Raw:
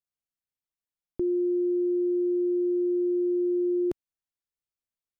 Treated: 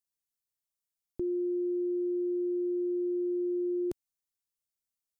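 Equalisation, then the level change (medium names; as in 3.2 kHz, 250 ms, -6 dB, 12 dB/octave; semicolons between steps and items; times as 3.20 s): tone controls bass +3 dB, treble +11 dB; -6.0 dB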